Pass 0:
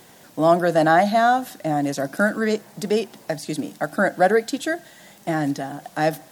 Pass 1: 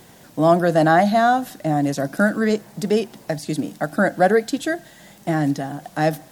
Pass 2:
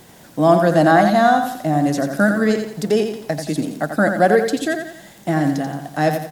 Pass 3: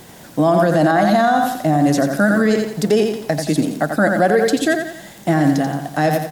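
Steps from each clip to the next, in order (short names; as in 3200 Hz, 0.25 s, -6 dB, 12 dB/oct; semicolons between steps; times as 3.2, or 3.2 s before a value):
low shelf 190 Hz +9 dB
feedback echo 87 ms, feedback 41%, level -7 dB; gain +1.5 dB
limiter -10.5 dBFS, peak gain reduction 9 dB; gain +4.5 dB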